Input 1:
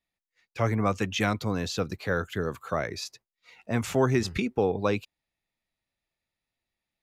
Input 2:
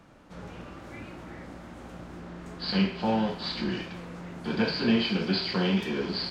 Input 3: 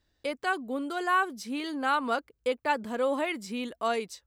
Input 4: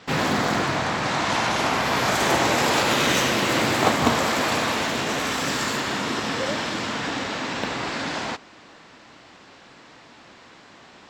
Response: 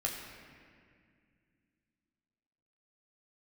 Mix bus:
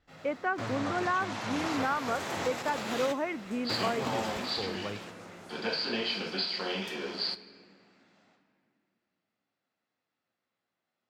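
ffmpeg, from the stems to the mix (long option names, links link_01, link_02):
-filter_complex "[0:a]volume=-15dB,asplit=3[link_01][link_02][link_03];[link_02]volume=-9.5dB[link_04];[1:a]bass=frequency=250:gain=-15,treble=frequency=4000:gain=6,bandreject=frequency=60:width_type=h:width=6,bandreject=frequency=120:width_type=h:width=6,bandreject=frequency=180:width_type=h:width=6,adelay=1050,volume=-5dB,asplit=2[link_05][link_06];[link_06]volume=-11.5dB[link_07];[2:a]lowpass=frequency=2100:width=0.5412,lowpass=frequency=2100:width=1.3066,volume=1dB[link_08];[3:a]highpass=110,volume=-13dB,afade=type=out:start_time=4.05:duration=0.6:silence=0.298538,asplit=2[link_09][link_10];[link_10]volume=-19dB[link_11];[link_03]apad=whole_len=489494[link_12];[link_09][link_12]sidechaingate=range=-29dB:threshold=-57dB:ratio=16:detection=peak[link_13];[4:a]atrim=start_sample=2205[link_14];[link_04][link_07][link_11]amix=inputs=3:normalize=0[link_15];[link_15][link_14]afir=irnorm=-1:irlink=0[link_16];[link_01][link_05][link_08][link_13][link_16]amix=inputs=5:normalize=0,alimiter=limit=-19.5dB:level=0:latency=1:release=472"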